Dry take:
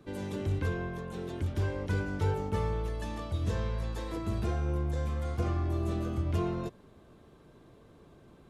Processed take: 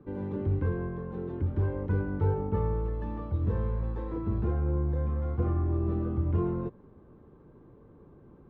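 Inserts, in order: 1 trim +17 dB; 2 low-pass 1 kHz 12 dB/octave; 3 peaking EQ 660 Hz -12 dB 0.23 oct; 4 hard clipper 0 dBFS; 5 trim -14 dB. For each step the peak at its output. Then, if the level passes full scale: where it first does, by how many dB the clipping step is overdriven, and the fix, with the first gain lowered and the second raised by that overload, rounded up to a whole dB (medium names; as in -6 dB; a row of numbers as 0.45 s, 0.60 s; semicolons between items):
-1.5 dBFS, -2.0 dBFS, -3.0 dBFS, -3.0 dBFS, -17.0 dBFS; nothing clips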